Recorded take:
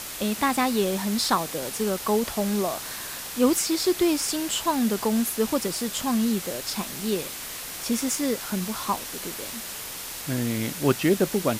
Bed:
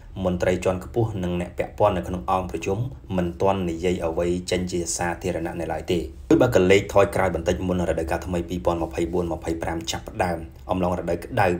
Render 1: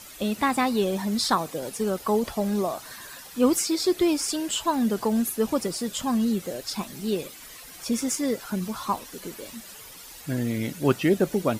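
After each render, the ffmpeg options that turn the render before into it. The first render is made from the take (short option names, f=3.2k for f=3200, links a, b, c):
-af "afftdn=nr=12:nf=-36"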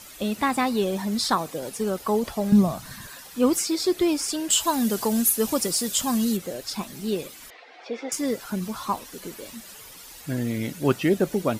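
-filter_complex "[0:a]asettb=1/sr,asplit=3[a][b][c];[a]atrim=end=2.524[d];[b]atrim=start=2.52:end=3.07,asetpts=PTS-STARTPTS,afade=t=in:d=0.004:c=qsin,afade=t=out:st=0.546:d=0.004:c=qsin,lowshelf=f=260:t=q:w=1.5:g=12[e];[c]atrim=start=3.066[f];[d][e]acrossfade=d=0.004:c1=hsin:c2=qsin[g];[g][f]acrossfade=d=0.004:c1=qsin:c2=hsin,asettb=1/sr,asplit=3[h][i][j];[h]atrim=end=4.504[k];[i]atrim=start=4.5:end=6.37,asetpts=PTS-STARTPTS,afade=t=in:d=0.004:c=qsin,afade=t=out:st=1.866:d=0.004:c=qsin,highshelf=f=3.8k:g=11.5[l];[j]atrim=start=6.366[m];[k][l]acrossfade=d=0.004:c1=hsin:c2=qsin[n];[n][m]acrossfade=d=0.004:c1=qsin:c2=hsin,asettb=1/sr,asplit=3[o][p][q];[o]atrim=end=7.504[r];[p]atrim=start=7.5:end=8.12,asetpts=PTS-STARTPTS,afade=t=in:d=0.004:c=qsin,afade=t=out:st=0.616:d=0.004:c=qsin,highpass=f=340:w=0.5412,highpass=f=340:w=1.3066,equalizer=f=470:t=q:w=4:g=4,equalizer=f=750:t=q:w=4:g=10,equalizer=f=1.1k:t=q:w=4:g=-4,equalizer=f=2.1k:t=q:w=4:g=3,equalizer=f=3k:t=q:w=4:g=-4,lowpass=f=3.6k:w=0.5412,lowpass=f=3.6k:w=1.3066[s];[q]atrim=start=8.116[t];[r][s]acrossfade=d=0.004:c1=hsin:c2=qsin[u];[u][t]acrossfade=d=0.004:c1=qsin:c2=hsin"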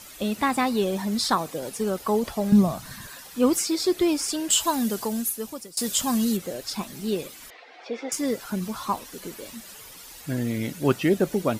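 -filter_complex "[0:a]asplit=2[a][b];[a]atrim=end=5.77,asetpts=PTS-STARTPTS,afade=t=out:st=4.61:d=1.16:silence=0.0707946[c];[b]atrim=start=5.77,asetpts=PTS-STARTPTS,afade=t=in:d=0.004:c=hsin:silence=0.0707946[d];[c][d]concat=n=2:v=0:a=1"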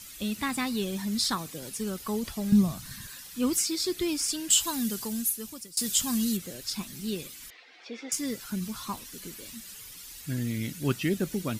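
-af "equalizer=f=660:w=0.63:g=-14"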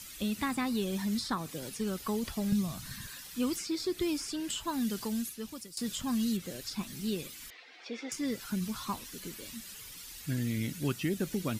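-filter_complex "[0:a]acrossover=split=1700|5000[a][b][c];[a]acompressor=threshold=-28dB:ratio=4[d];[b]acompressor=threshold=-43dB:ratio=4[e];[c]acompressor=threshold=-46dB:ratio=4[f];[d][e][f]amix=inputs=3:normalize=0"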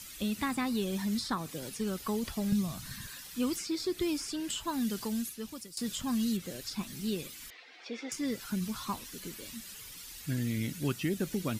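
-af anull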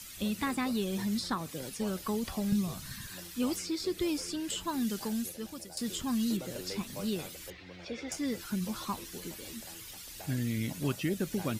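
-filter_complex "[1:a]volume=-27dB[a];[0:a][a]amix=inputs=2:normalize=0"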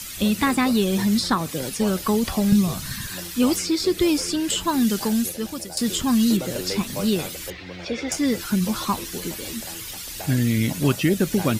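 -af "volume=12dB"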